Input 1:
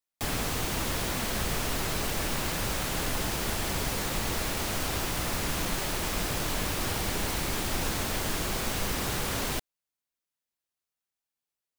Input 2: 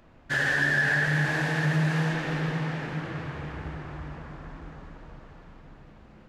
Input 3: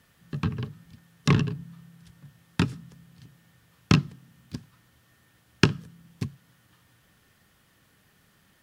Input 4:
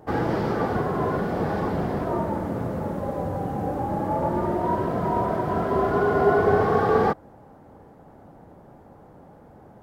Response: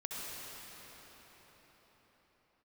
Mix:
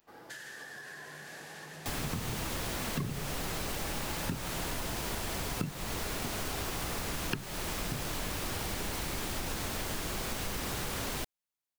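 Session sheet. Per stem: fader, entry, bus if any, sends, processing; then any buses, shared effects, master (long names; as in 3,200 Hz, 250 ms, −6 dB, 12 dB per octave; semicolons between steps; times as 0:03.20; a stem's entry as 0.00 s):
−3.0 dB, 1.65 s, no bus, no send, no processing
−3.0 dB, 0.00 s, bus A, no send, spectral tilt +2 dB per octave
−3.5 dB, 1.70 s, no bus, no send, gate on every frequency bin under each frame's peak −20 dB strong
−13.0 dB, 0.00 s, bus A, no send, high-pass filter 440 Hz 6 dB per octave; automatic gain control gain up to 11 dB
bus A: 0.0 dB, first-order pre-emphasis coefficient 0.8; downward compressor 12 to 1, threshold −43 dBFS, peak gain reduction 12 dB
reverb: not used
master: downward compressor 10 to 1, threshold −31 dBFS, peak gain reduction 15.5 dB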